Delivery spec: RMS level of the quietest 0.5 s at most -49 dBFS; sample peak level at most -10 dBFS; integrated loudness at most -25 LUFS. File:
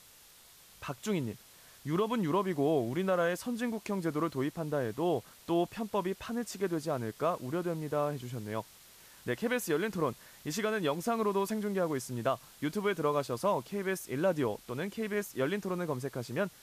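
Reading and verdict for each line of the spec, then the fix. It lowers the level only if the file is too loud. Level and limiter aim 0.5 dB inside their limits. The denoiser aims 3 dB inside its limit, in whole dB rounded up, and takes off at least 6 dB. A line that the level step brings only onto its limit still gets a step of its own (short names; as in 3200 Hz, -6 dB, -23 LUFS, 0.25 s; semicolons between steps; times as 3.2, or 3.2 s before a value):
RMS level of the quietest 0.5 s -58 dBFS: OK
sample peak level -18.5 dBFS: OK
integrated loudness -33.5 LUFS: OK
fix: none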